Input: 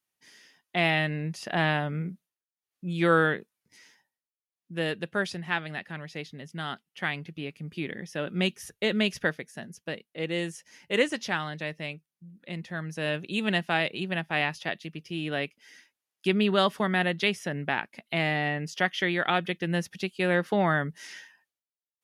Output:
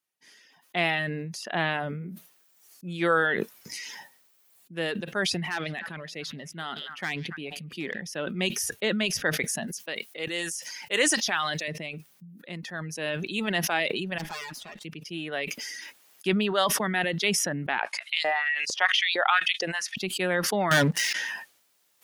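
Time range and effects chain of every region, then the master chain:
5.38–8.01 hard clip -23 dBFS + delay with a stepping band-pass 0.14 s, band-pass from 3600 Hz, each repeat -1.4 oct, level -12 dB
9.67–11.68 HPF 420 Hz 6 dB/oct + high shelf 3300 Hz +8 dB
14.18–14.85 minimum comb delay 4.8 ms + compressor 2.5:1, threshold -41 dBFS
17.79–19.97 LPF 9800 Hz 24 dB/oct + LFO high-pass saw up 2.2 Hz 500–4500 Hz
20.71–21.13 median filter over 3 samples + sample leveller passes 5
whole clip: reverb removal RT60 1.2 s; HPF 210 Hz 6 dB/oct; sustainer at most 26 dB/s

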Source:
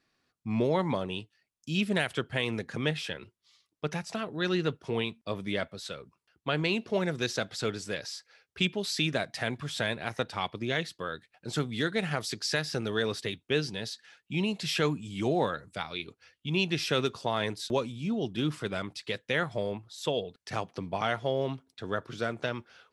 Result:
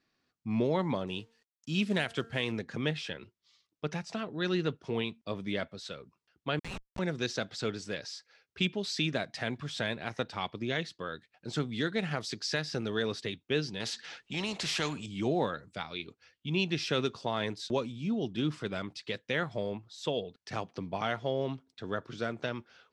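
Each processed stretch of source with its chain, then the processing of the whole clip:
1.07–2.52 high shelf 6300 Hz +4.5 dB + de-hum 228.9 Hz, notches 8 + companded quantiser 6-bit
6.59–6.99 Chebyshev high-pass 720 Hz, order 10 + Schmitt trigger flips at -33 dBFS
13.8–15.06 high shelf 7900 Hz -6.5 dB + spectral compressor 2:1
whole clip: Chebyshev low-pass 6000 Hz, order 2; bell 240 Hz +3 dB 1.4 oct; gain -2.5 dB

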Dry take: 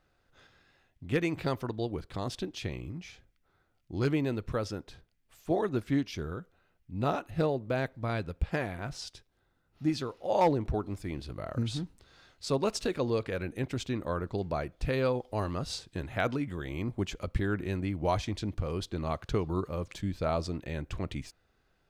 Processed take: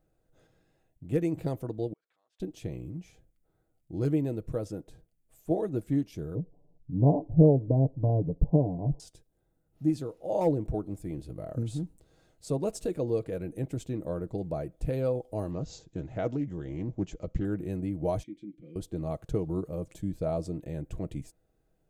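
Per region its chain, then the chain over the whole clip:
1.93–2.4 compressor, threshold -43 dBFS + ladder band-pass 1900 Hz, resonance 25%
6.35–9 brick-wall FIR low-pass 1100 Hz + low shelf 490 Hz +7.5 dB + comb 7 ms
15.51–17.45 careless resampling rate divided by 3×, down none, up filtered + Doppler distortion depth 0.42 ms
18.23–18.76 vowel filter i + comb 5.8 ms, depth 86%
whole clip: band shelf 2300 Hz -13.5 dB 2.9 oct; comb 6.3 ms, depth 37%

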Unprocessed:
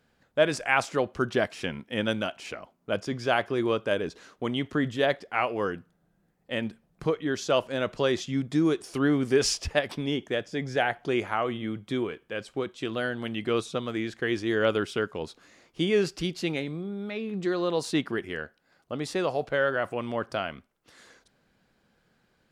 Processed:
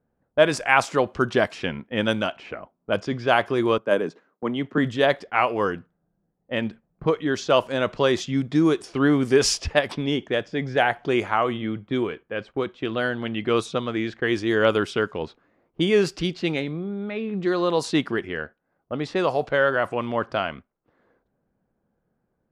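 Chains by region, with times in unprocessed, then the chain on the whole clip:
3.78–4.78 HPF 140 Hz 24 dB/oct + bell 3600 Hz -7 dB 1.6 oct + three-band expander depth 70%
whole clip: dynamic EQ 1000 Hz, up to +4 dB, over -40 dBFS, Q 2.4; gate -44 dBFS, range -8 dB; low-pass opened by the level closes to 850 Hz, open at -22.5 dBFS; gain +4.5 dB

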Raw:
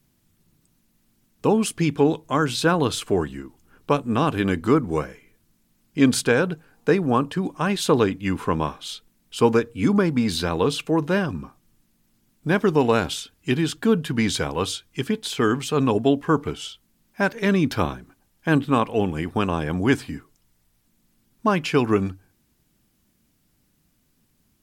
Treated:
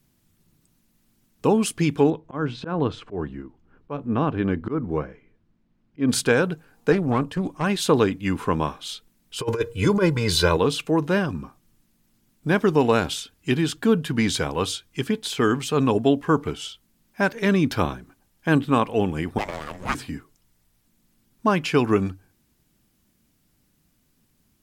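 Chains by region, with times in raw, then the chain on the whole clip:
2.1–6.09 auto swell 0.142 s + tape spacing loss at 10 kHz 33 dB
6.92–7.64 low shelf 180 Hz +5 dB + tube stage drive 13 dB, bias 0.55 + Doppler distortion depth 0.13 ms
9.39–10.57 comb 2 ms, depth 93% + negative-ratio compressor -18 dBFS, ratio -0.5
19.38–19.95 minimum comb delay 0.73 ms + HPF 650 Hz + frequency shift -460 Hz
whole clip: dry

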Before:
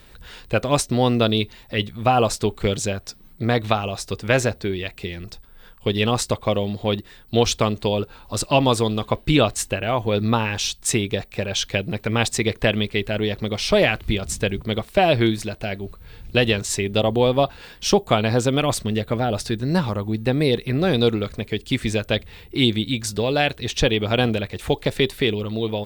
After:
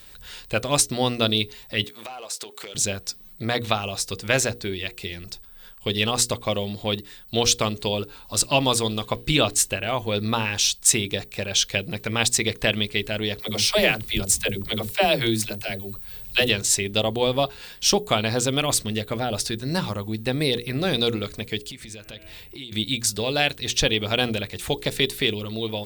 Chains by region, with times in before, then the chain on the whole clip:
1.84–2.75 HPF 440 Hz + sample leveller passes 1 + compressor 10:1, threshold -31 dBFS
13.39–16.49 high shelf 12000 Hz +10 dB + dispersion lows, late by 80 ms, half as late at 340 Hz
21.66–22.72 de-hum 160.7 Hz, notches 18 + compressor 8:1, threshold -33 dBFS
whole clip: high shelf 3000 Hz +12 dB; notches 60/120/180/240/300/360/420/480 Hz; gain -4.5 dB

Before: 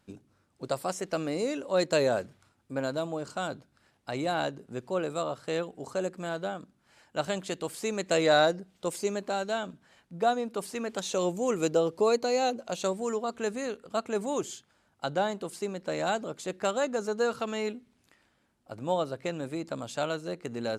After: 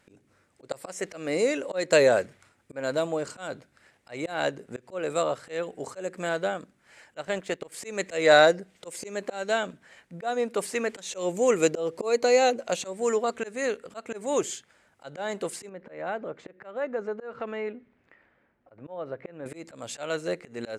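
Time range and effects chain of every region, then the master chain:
7.22–7.72 G.711 law mismatch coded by A + high shelf 3800 Hz -9.5 dB
15.69–19.46 LPF 1800 Hz + compressor 1.5:1, threshold -44 dBFS
whole clip: graphic EQ 500/2000/8000 Hz +7/+11/+7 dB; auto swell 0.215 s

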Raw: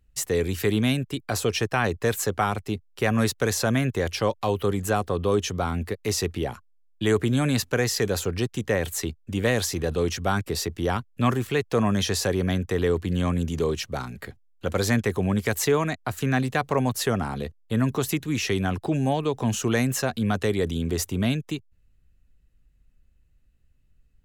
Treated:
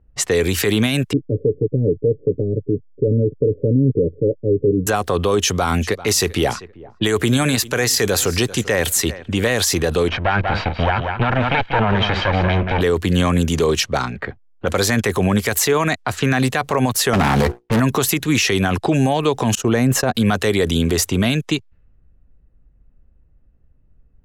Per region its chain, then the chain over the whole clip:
1.13–4.87 steep low-pass 520 Hz 96 dB/oct + comb 6.9 ms, depth 67%
5.41–9.35 high shelf 4900 Hz +4.5 dB + feedback echo 0.391 s, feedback 27%, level -22 dB
10.08–12.81 minimum comb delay 1.3 ms + LPF 3100 Hz 24 dB/oct + echo 0.188 s -9.5 dB
17.13–17.8 notches 60/120/180/240/300/360/420/480 Hz + sample leveller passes 3 + running maximum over 9 samples
19.55–20.15 gate -30 dBFS, range -21 dB + tilt shelf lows +6 dB, about 1200 Hz
whole clip: low-pass opened by the level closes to 740 Hz, open at -23 dBFS; low shelf 420 Hz -7 dB; maximiser +22 dB; gain -7 dB

